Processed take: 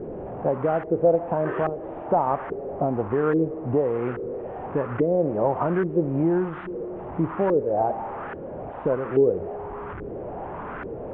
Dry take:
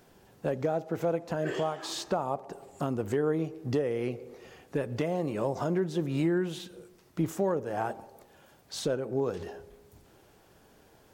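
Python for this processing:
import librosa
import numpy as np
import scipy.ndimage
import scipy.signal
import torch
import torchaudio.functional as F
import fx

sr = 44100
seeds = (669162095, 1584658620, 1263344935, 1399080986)

y = fx.delta_mod(x, sr, bps=16000, step_db=-34.0)
y = fx.filter_lfo_lowpass(y, sr, shape='saw_up', hz=1.2, low_hz=400.0, high_hz=1500.0, q=2.6)
y = F.gain(torch.from_numpy(y), 4.0).numpy()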